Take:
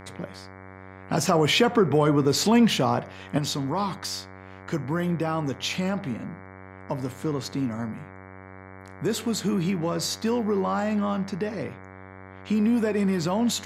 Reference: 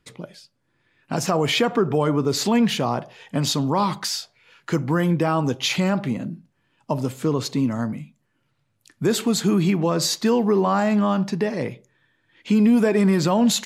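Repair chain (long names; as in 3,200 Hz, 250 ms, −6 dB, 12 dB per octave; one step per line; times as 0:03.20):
hum removal 94.8 Hz, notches 24
level 0 dB, from 0:03.38 +6 dB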